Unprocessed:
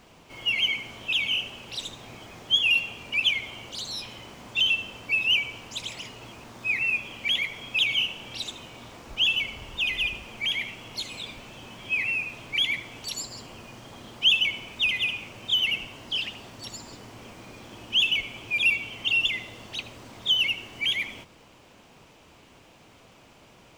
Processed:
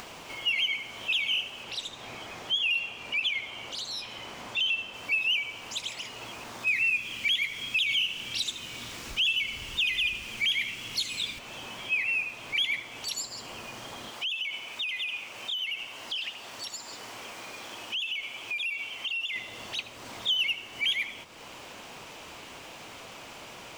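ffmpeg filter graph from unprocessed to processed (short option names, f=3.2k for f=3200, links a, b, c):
-filter_complex "[0:a]asettb=1/sr,asplit=3[a][b][c];[a]atrim=end=1.634[d];[b]atrim=start=1.63:end=4.94,asetpts=PTS-STARTPTS,afade=t=in:d=0.004:c=qsin,afade=t=out:st=3.306:d=0.004:c=qsin,highshelf=f=6.7k:g=-6.5,acompressor=threshold=-25dB:ratio=2.5:attack=3.2:release=140:knee=1:detection=peak[e];[c]atrim=start=4.936[f];[d][e]acrossfade=d=0.004:c1=hsin:c2=qsin[g];[g][f]acrossfade=d=0.004:c1=qsin:c2=hsin,asettb=1/sr,asplit=3[h][i][j];[h]atrim=end=6.674[k];[i]atrim=start=6.67:end=11.39,asetpts=PTS-STARTPTS,afade=t=in:d=0.004:c=qsin,afade=t=out:st=4.716:d=0.004:c=qsin,acontrast=86,equalizer=f=750:t=o:w=2:g=-11.5[l];[j]atrim=start=11.386[m];[k][l]acrossfade=d=0.004:c1=hsin:c2=qsin[n];[n][m]acrossfade=d=0.004:c1=qsin:c2=hsin,asettb=1/sr,asplit=3[o][p][q];[o]atrim=end=14.104[r];[p]atrim=start=14.1:end=19.36,asetpts=PTS-STARTPTS,afade=t=in:d=0.004:c=qsin,afade=t=out:st=5.256:d=0.004:c=qsin,lowshelf=f=290:g=-10.5,acompressor=threshold=-29dB:ratio=8:attack=3.2:release=140:knee=1:detection=peak[s];[q]atrim=start=19.356[t];[r][s]acrossfade=d=0.004:c1=hsin:c2=qsin[u];[u][t]acrossfade=d=0.004:c1=qsin:c2=hsin,alimiter=limit=-19dB:level=0:latency=1:release=171,lowshelf=f=380:g=-11,acompressor=mode=upward:threshold=-33dB:ratio=2.5"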